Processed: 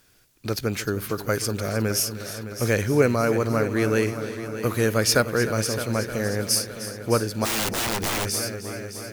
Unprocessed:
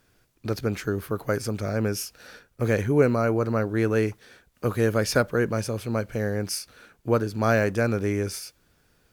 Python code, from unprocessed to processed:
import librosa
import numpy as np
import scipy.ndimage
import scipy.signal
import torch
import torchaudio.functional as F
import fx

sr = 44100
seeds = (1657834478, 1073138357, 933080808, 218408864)

y = fx.high_shelf(x, sr, hz=2300.0, db=9.5)
y = fx.dmg_noise_colour(y, sr, seeds[0], colour='white', level_db=-65.0, at=(1.17, 1.87), fade=0.02)
y = fx.echo_heads(y, sr, ms=307, heads='first and second', feedback_pct=57, wet_db=-14)
y = fx.overflow_wrap(y, sr, gain_db=20.5, at=(7.44, 8.24), fade=0.02)